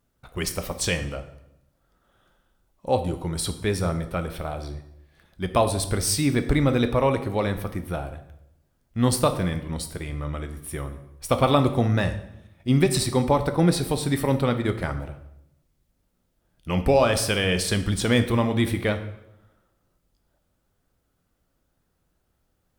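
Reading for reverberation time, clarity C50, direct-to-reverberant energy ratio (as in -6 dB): 0.80 s, 11.5 dB, 8.0 dB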